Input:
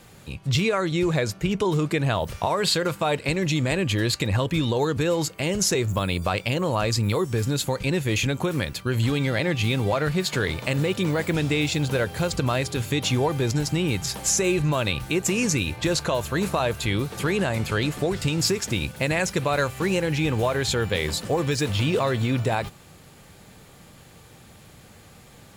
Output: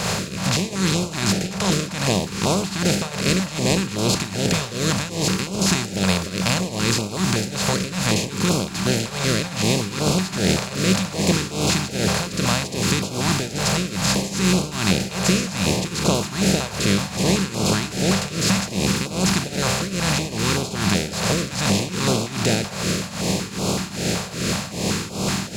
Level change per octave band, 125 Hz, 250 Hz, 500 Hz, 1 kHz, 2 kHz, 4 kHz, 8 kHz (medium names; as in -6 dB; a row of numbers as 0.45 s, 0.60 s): +1.5 dB, +4.5 dB, -0.5 dB, +2.0 dB, +2.5 dB, +6.0 dB, +6.5 dB